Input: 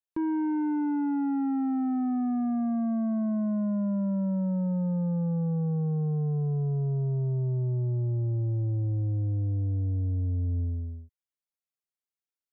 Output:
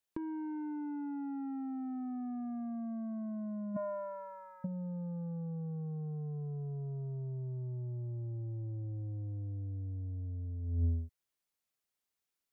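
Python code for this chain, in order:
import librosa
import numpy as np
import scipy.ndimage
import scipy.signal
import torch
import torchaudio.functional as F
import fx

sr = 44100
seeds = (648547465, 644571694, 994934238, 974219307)

y = fx.highpass(x, sr, hz=fx.line((3.75, 470.0), (4.64, 1300.0)), slope=24, at=(3.75, 4.64), fade=0.02)
y = fx.over_compress(y, sr, threshold_db=-33.0, ratio=-0.5)
y = y * 10.0 ** (-2.5 / 20.0)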